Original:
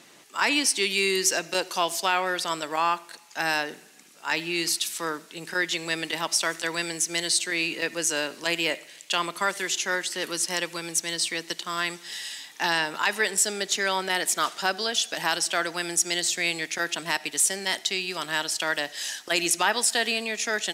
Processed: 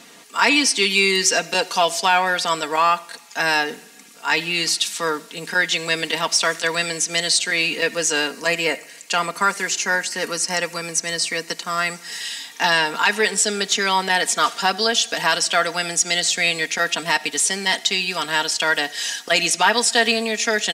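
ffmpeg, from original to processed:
-filter_complex "[0:a]asettb=1/sr,asplit=3[s0][s1][s2];[s0]atrim=end=8.314[s3];[s1]atrim=start=8.31:end=12.21,asetpts=PTS-STARTPTS,afade=t=in:d=0.004:c=qsin,afade=t=out:st=3.896:d=0.004:c=qsin,equalizer=f=3400:t=o:w=0.4:g=-10.5[s4];[s2]atrim=start=12.206[s5];[s3][s4]acrossfade=d=0.004:c1=hsin:c2=qsin[s6];[s6][s5]acrossfade=d=0.004:c1=qsin:c2=hsin,acrossover=split=8700[s7][s8];[s8]acompressor=threshold=0.00355:ratio=4:attack=1:release=60[s9];[s7][s9]amix=inputs=2:normalize=0,aecho=1:1:4.3:0.6,acontrast=56"

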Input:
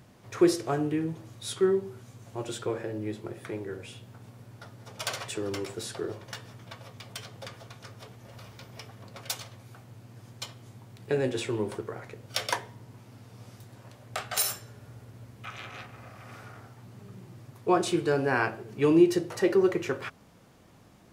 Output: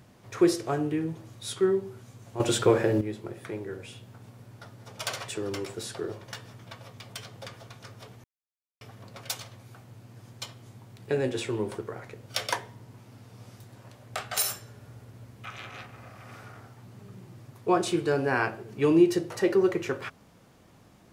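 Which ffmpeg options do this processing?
-filter_complex "[0:a]asplit=5[s0][s1][s2][s3][s4];[s0]atrim=end=2.402[s5];[s1]atrim=start=2.398:end=3.012,asetpts=PTS-STARTPTS,volume=3.35[s6];[s2]atrim=start=3.008:end=8.24,asetpts=PTS-STARTPTS,afade=t=out:st=5.228:d=0.004:c=hsin[s7];[s3]atrim=start=8.24:end=8.81,asetpts=PTS-STARTPTS,volume=0[s8];[s4]atrim=start=8.81,asetpts=PTS-STARTPTS,afade=t=in:d=0.004:c=hsin[s9];[s5][s6]acrossfade=d=0.004:c1=hsin:c2=hsin[s10];[s7][s8][s9]concat=n=3:v=0:a=1[s11];[s10][s11]acrossfade=d=0.004:c1=hsin:c2=hsin"

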